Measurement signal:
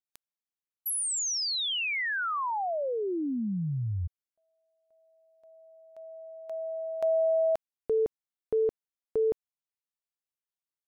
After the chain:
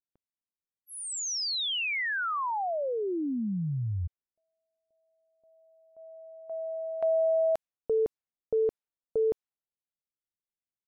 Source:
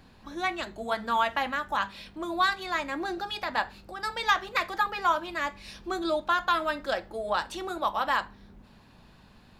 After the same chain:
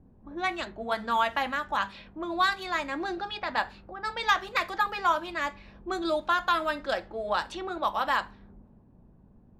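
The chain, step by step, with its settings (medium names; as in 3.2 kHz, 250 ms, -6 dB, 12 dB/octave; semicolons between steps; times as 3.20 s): level-controlled noise filter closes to 390 Hz, open at -26 dBFS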